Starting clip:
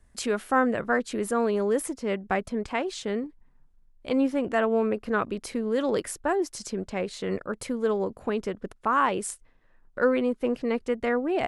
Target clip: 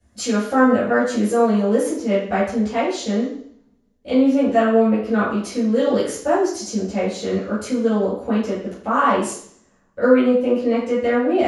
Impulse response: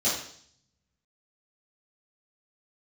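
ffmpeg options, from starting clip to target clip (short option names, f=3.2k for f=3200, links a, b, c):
-filter_complex "[1:a]atrim=start_sample=2205[a];[0:a][a]afir=irnorm=-1:irlink=0,volume=-5.5dB"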